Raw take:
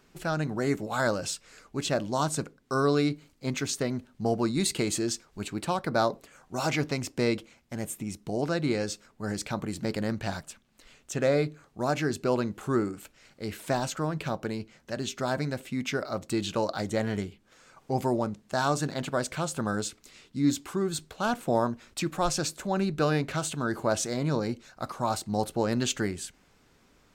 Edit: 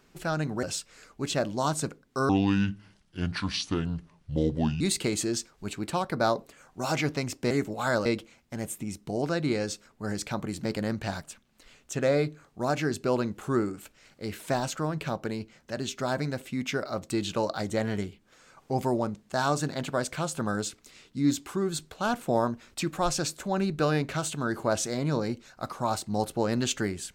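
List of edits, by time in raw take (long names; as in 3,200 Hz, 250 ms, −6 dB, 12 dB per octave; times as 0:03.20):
0:00.63–0:01.18: move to 0:07.25
0:02.84–0:04.55: play speed 68%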